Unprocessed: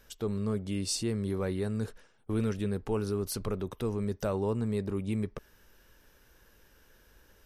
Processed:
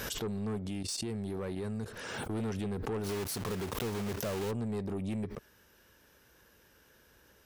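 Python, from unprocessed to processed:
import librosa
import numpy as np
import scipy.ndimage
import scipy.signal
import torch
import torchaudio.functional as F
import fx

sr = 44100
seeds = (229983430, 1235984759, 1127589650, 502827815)

y = fx.block_float(x, sr, bits=3, at=(3.03, 4.5), fade=0.02)
y = scipy.signal.sosfilt(scipy.signal.butter(2, 77.0, 'highpass', fs=sr, output='sos'), y)
y = fx.level_steps(y, sr, step_db=17, at=(0.69, 1.86))
y = 10.0 ** (-30.5 / 20.0) * np.tanh(y / 10.0 ** (-30.5 / 20.0))
y = fx.pre_swell(y, sr, db_per_s=28.0)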